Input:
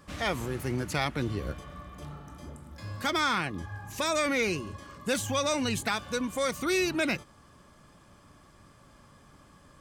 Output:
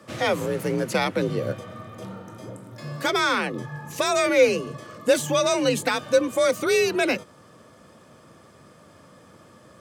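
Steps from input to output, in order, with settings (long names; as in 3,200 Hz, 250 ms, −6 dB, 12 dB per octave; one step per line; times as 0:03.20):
parametric band 470 Hz +12 dB 0.35 octaves
frequency shifter +45 Hz
high-pass filter 88 Hz
level +4.5 dB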